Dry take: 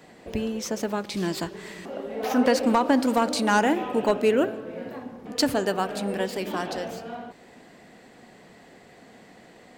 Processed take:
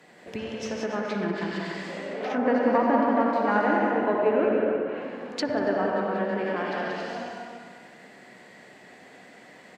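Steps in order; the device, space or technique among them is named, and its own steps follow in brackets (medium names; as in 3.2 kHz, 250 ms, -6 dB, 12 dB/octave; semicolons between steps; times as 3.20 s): stadium PA (high-pass 130 Hz 12 dB/octave; peaking EQ 1.9 kHz +5 dB 1 oct; loudspeakers at several distances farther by 63 m -5 dB, 95 m -7 dB; reverberation RT60 1.7 s, pre-delay 51 ms, DRR -0.5 dB); low-pass that closes with the level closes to 1.4 kHz, closed at -17.5 dBFS; peaking EQ 250 Hz -3 dB 0.42 oct; trim -4.5 dB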